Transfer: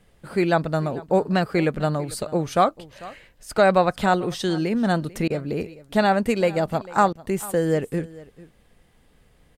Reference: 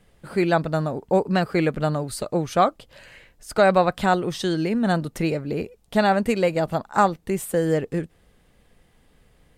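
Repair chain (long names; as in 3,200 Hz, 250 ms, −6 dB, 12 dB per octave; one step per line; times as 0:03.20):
repair the gap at 0:05.09, 1.2 ms
repair the gap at 0:05.28/0:07.13, 21 ms
echo removal 445 ms −20 dB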